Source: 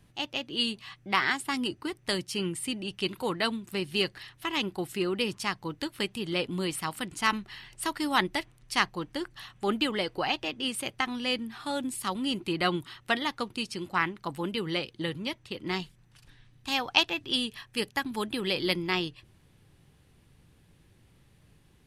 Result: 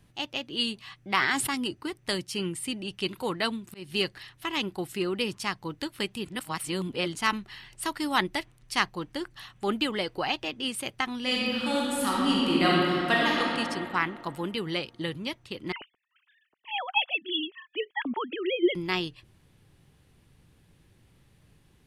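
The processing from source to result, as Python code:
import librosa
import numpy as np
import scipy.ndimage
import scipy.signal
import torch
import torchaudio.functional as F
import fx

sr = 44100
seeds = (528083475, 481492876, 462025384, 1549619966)

y = fx.sustainer(x, sr, db_per_s=40.0, at=(1.02, 1.55))
y = fx.auto_swell(y, sr, attack_ms=200.0, at=(3.47, 3.9))
y = fx.reverb_throw(y, sr, start_s=11.2, length_s=2.21, rt60_s=2.6, drr_db=-5.0)
y = fx.sine_speech(y, sr, at=(15.72, 18.75))
y = fx.edit(y, sr, fx.reverse_span(start_s=6.25, length_s=0.9), tone=tone)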